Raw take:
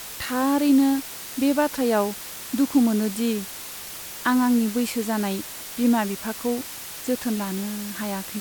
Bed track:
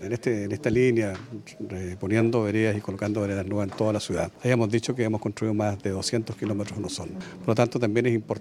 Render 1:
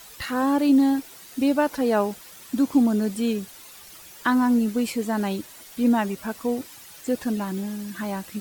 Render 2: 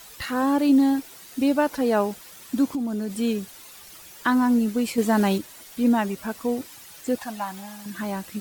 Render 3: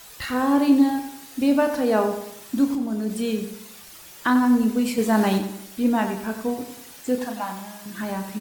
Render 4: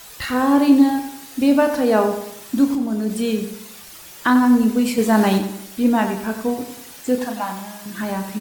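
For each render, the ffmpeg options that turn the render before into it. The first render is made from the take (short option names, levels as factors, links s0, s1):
-af "afftdn=nr=11:nf=-37"
-filter_complex "[0:a]asettb=1/sr,asplit=3[s0][s1][s2];[s0]atrim=end=2.694[s3];[s1]atrim=start=2.69:end=3.16,asetpts=PTS-STARTPTS,afade=t=in:d=0.004:c=qsin,afade=t=out:st=0.466:d=0.004:c=qsin,acompressor=threshold=0.0631:ratio=6:attack=3.2:release=140:knee=1:detection=peak[s4];[s2]atrim=start=3.156[s5];[s3][s4]acrossfade=d=0.004:c1=hsin:c2=qsin[s6];[s6][s5]acrossfade=d=0.004:c1=qsin:c2=hsin,asettb=1/sr,asplit=3[s7][s8][s9];[s7]atrim=end=7.184[s10];[s8]atrim=start=7.18:end=7.86,asetpts=PTS-STARTPTS,afade=t=in:d=0.004:c=qsin,afade=t=out:st=0.676:d=0.004:c=qsin,lowshelf=f=570:t=q:w=3:g=-9.5[s11];[s9]atrim=start=7.856[s12];[s10][s11]acrossfade=d=0.004:c1=hsin:c2=qsin[s13];[s13][s12]acrossfade=d=0.004:c1=qsin:c2=hsin,asplit=3[s14][s15][s16];[s14]atrim=end=4.982[s17];[s15]atrim=start=4.978:end=5.382,asetpts=PTS-STARTPTS,volume=1.78[s18];[s16]atrim=start=5.378[s19];[s17][s18]acrossfade=d=0.004:c1=hsin:c2=hsin[s20];[s20][s19]acrossfade=d=0.004:c1=hsin:c2=hsin"
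-filter_complex "[0:a]asplit=2[s0][s1];[s1]adelay=32,volume=0.398[s2];[s0][s2]amix=inputs=2:normalize=0,asplit=2[s3][s4];[s4]adelay=93,lowpass=f=3300:p=1,volume=0.376,asplit=2[s5][s6];[s6]adelay=93,lowpass=f=3300:p=1,volume=0.46,asplit=2[s7][s8];[s8]adelay=93,lowpass=f=3300:p=1,volume=0.46,asplit=2[s9][s10];[s10]adelay=93,lowpass=f=3300:p=1,volume=0.46,asplit=2[s11][s12];[s12]adelay=93,lowpass=f=3300:p=1,volume=0.46[s13];[s3][s5][s7][s9][s11][s13]amix=inputs=6:normalize=0"
-af "volume=1.58"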